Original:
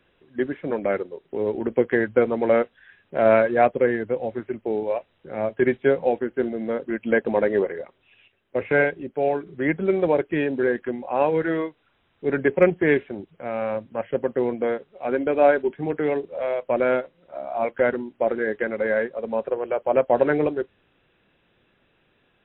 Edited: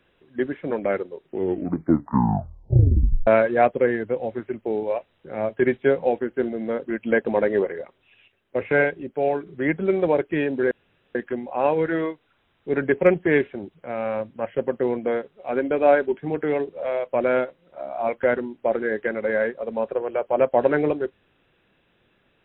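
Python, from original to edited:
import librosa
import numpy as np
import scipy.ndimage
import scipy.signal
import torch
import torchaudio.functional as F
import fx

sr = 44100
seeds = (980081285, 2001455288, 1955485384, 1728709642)

y = fx.edit(x, sr, fx.tape_stop(start_s=1.21, length_s=2.06),
    fx.insert_room_tone(at_s=10.71, length_s=0.44), tone=tone)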